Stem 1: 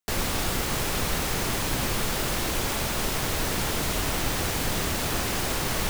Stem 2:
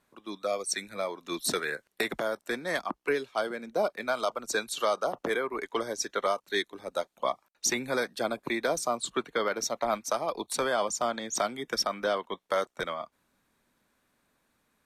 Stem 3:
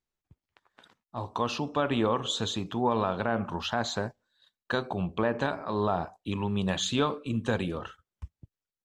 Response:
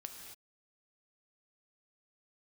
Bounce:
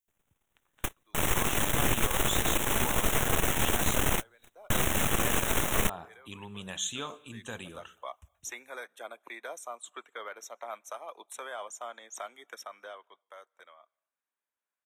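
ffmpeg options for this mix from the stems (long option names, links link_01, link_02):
-filter_complex "[0:a]aeval=exprs='0.211*(cos(1*acos(clip(val(0)/0.211,-1,1)))-cos(1*PI/2))+0.0668*(cos(4*acos(clip(val(0)/0.211,-1,1)))-cos(4*PI/2))+0.0299*(cos(8*acos(clip(val(0)/0.211,-1,1)))-cos(8*PI/2))':channel_layout=same,volume=-4dB[link_01];[1:a]highpass=620,adelay=800,volume=-10dB,afade=type=in:start_time=7.35:duration=0.75:silence=0.237137,afade=type=out:start_time=12.51:duration=0.7:silence=0.316228,asplit=2[link_02][link_03];[link_03]volume=-23dB[link_04];[2:a]crystalizer=i=9:c=0,volume=-16.5dB,asplit=3[link_05][link_06][link_07];[link_06]volume=-12.5dB[link_08];[link_07]apad=whole_len=259906[link_09];[link_01][link_09]sidechaingate=range=-50dB:threshold=-60dB:ratio=16:detection=peak[link_10];[3:a]atrim=start_sample=2205[link_11];[link_04][link_08]amix=inputs=2:normalize=0[link_12];[link_12][link_11]afir=irnorm=-1:irlink=0[link_13];[link_10][link_02][link_05][link_13]amix=inputs=4:normalize=0,asuperstop=centerf=4700:order=4:qfactor=1.9"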